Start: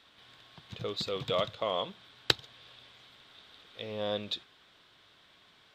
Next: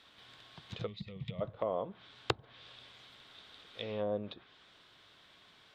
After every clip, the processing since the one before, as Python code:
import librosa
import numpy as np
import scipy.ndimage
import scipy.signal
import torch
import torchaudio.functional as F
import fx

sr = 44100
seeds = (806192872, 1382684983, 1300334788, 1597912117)

y = fx.env_lowpass_down(x, sr, base_hz=750.0, full_db=-30.0)
y = fx.spec_box(y, sr, start_s=0.87, length_s=0.54, low_hz=230.0, high_hz=1800.0, gain_db=-18)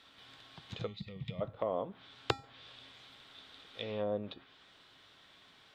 y = fx.comb_fb(x, sr, f0_hz=270.0, decay_s=0.39, harmonics='odd', damping=0.0, mix_pct=70)
y = y * librosa.db_to_amplitude(10.0)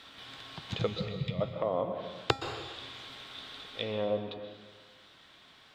y = fx.rider(x, sr, range_db=4, speed_s=0.5)
y = fx.rev_plate(y, sr, seeds[0], rt60_s=1.4, hf_ratio=0.95, predelay_ms=110, drr_db=6.5)
y = y * librosa.db_to_amplitude(5.0)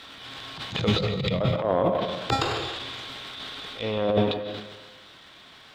y = fx.transient(x, sr, attack_db=-11, sustain_db=11)
y = y * librosa.db_to_amplitude(8.0)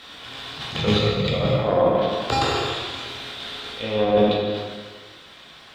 y = fx.rev_plate(x, sr, seeds[1], rt60_s=1.2, hf_ratio=0.95, predelay_ms=0, drr_db=-2.0)